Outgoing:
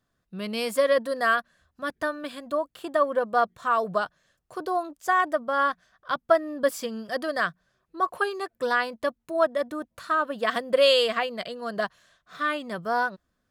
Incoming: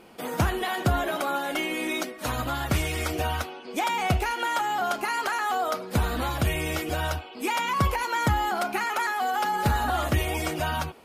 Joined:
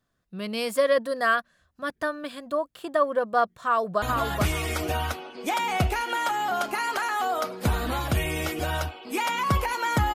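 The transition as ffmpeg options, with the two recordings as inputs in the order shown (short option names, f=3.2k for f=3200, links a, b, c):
-filter_complex "[0:a]apad=whole_dur=10.14,atrim=end=10.14,atrim=end=4.022[a];[1:a]atrim=start=2.318:end=8.44[b];[a][b]acrossfade=d=0.004:c1=hsin:c2=hsin,asplit=2[c][d];[d]afade=t=in:st=3.58:d=0.01,afade=t=out:st=4.02:d=0.01,aecho=0:1:430|860|1290:0.562341|0.140585|0.0351463[e];[c][e]amix=inputs=2:normalize=0"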